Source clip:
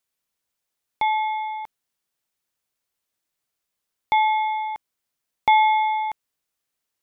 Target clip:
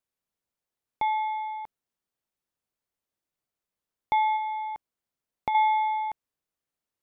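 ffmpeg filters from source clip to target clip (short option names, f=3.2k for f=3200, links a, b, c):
-filter_complex "[0:a]tiltshelf=f=1.3k:g=4.5,asettb=1/sr,asplit=3[a][b][c];[a]atrim=end=4.364[d];[b]atrim=start=4.36:end=5.55,asetpts=PTS-STARTPTS,afade=t=in:d=0.004:c=qsin,afade=t=out:st=1.186:d=0.004:c=qsin,acompressor=threshold=-23dB:ratio=2.5[e];[c]atrim=start=5.546[f];[d][e]acrossfade=d=0.004:c1=hsin:c2=qsin[g];[g][f]acrossfade=d=0.004:c1=qsin:c2=hsin,volume=-6dB"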